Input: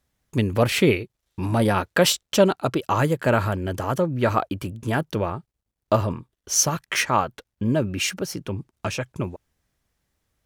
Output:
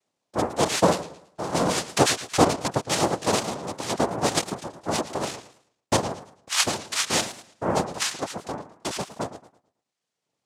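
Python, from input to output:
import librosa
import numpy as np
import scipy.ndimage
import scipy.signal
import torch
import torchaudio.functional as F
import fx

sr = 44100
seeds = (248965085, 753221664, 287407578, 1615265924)

y = fx.dereverb_blind(x, sr, rt60_s=0.98)
y = fx.noise_vocoder(y, sr, seeds[0], bands=2)
y = fx.echo_warbled(y, sr, ms=110, feedback_pct=32, rate_hz=2.8, cents=178, wet_db=-14)
y = y * 10.0 ** (-2.0 / 20.0)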